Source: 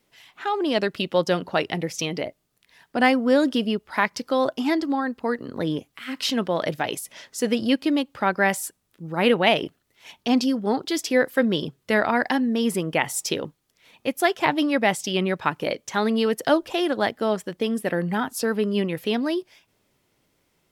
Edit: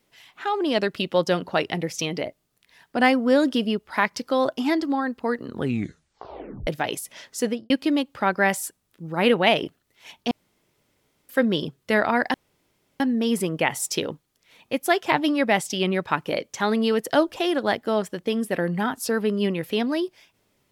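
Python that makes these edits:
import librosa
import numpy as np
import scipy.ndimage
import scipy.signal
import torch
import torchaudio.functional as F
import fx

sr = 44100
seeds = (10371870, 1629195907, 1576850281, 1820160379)

y = fx.studio_fade_out(x, sr, start_s=7.41, length_s=0.29)
y = fx.edit(y, sr, fx.tape_stop(start_s=5.45, length_s=1.22),
    fx.room_tone_fill(start_s=10.31, length_s=0.98),
    fx.insert_room_tone(at_s=12.34, length_s=0.66), tone=tone)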